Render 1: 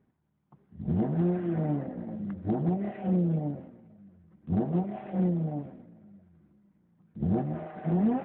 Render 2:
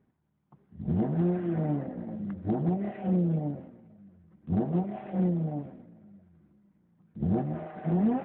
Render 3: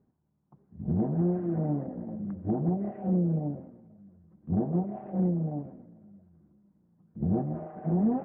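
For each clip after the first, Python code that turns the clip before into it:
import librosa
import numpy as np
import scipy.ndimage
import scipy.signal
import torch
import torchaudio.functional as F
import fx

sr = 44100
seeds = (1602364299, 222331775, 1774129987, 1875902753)

y1 = x
y2 = scipy.signal.sosfilt(scipy.signal.butter(2, 1000.0, 'lowpass', fs=sr, output='sos'), y1)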